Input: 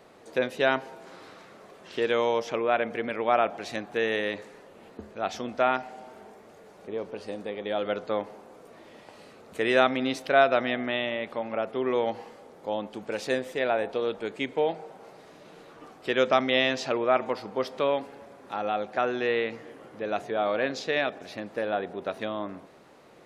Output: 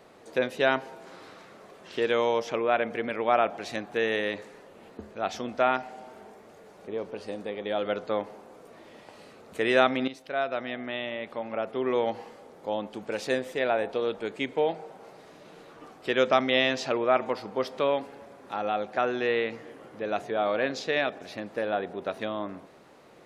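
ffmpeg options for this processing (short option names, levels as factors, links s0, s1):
-filter_complex "[0:a]asplit=2[s0][s1];[s0]atrim=end=10.08,asetpts=PTS-STARTPTS,afade=t=out:st=10.076:d=0.004:c=hsin:silence=0.223872[s2];[s1]atrim=start=10.08,asetpts=PTS-STARTPTS,afade=t=in:d=1.89:silence=0.223872[s3];[s2][s3]concat=n=2:v=0:a=1"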